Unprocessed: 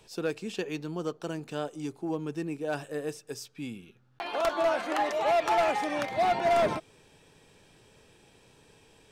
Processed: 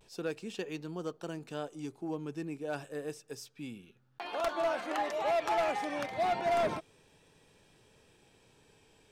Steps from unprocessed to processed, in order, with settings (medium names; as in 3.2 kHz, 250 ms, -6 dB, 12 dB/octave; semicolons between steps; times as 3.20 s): vibrato 0.31 Hz 24 cents; trim -5 dB